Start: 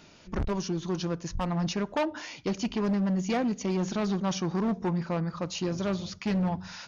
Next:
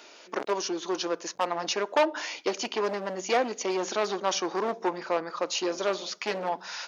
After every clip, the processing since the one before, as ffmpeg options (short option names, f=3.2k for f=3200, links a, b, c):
-af "highpass=f=370:w=0.5412,highpass=f=370:w=1.3066,volume=6dB"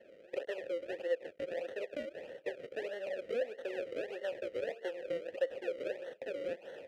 -filter_complex "[0:a]acrossover=split=330|900[a][b][c];[a]acompressor=threshold=-49dB:ratio=4[d];[b]acompressor=threshold=-32dB:ratio=4[e];[c]acompressor=threshold=-40dB:ratio=4[f];[d][e][f]amix=inputs=3:normalize=0,acrusher=samples=35:mix=1:aa=0.000001:lfo=1:lforange=35:lforate=1.6,asplit=3[g][h][i];[g]bandpass=f=530:t=q:w=8,volume=0dB[j];[h]bandpass=f=1.84k:t=q:w=8,volume=-6dB[k];[i]bandpass=f=2.48k:t=q:w=8,volume=-9dB[l];[j][k][l]amix=inputs=3:normalize=0,volume=5dB"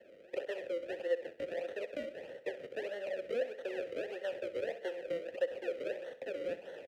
-filter_complex "[0:a]acrossover=split=200|770|2400[a][b][c][d];[a]acrusher=bits=3:mode=log:mix=0:aa=0.000001[e];[e][b][c][d]amix=inputs=4:normalize=0,aecho=1:1:64|128|192|256:0.211|0.0909|0.0391|0.0168"